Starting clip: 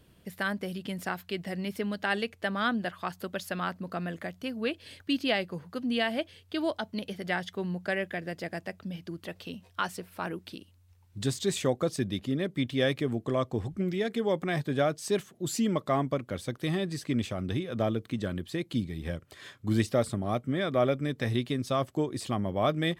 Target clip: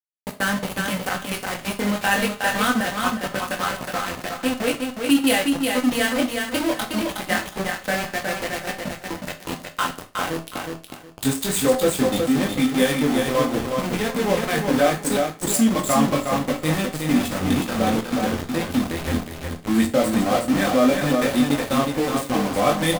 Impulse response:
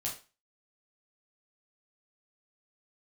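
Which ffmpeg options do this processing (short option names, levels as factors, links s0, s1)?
-filter_complex "[0:a]bandreject=f=60:t=h:w=6,bandreject=f=120:t=h:w=6,bandreject=f=180:t=h:w=6,bandreject=f=240:t=h:w=6,bandreject=f=300:t=h:w=6,bandreject=f=360:t=h:w=6,bandreject=f=420:t=h:w=6,bandreject=f=480:t=h:w=6,bandreject=f=540:t=h:w=6,aecho=1:1:3.9:0.66,asplit=2[s0][s1];[s1]acompressor=threshold=0.0141:ratio=8,volume=1.33[s2];[s0][s2]amix=inputs=2:normalize=0,flanger=delay=19.5:depth=4.8:speed=0.24,adynamicsmooth=sensitivity=4:basefreq=3800,aexciter=amount=8.9:drive=5.1:freq=7700,aeval=exprs='val(0)*gte(abs(val(0)),0.0299)':c=same,aecho=1:1:365|730|1095:0.596|0.131|0.0288,asplit=2[s3][s4];[1:a]atrim=start_sample=2205[s5];[s4][s5]afir=irnorm=-1:irlink=0,volume=0.75[s6];[s3][s6]amix=inputs=2:normalize=0,volume=1.5"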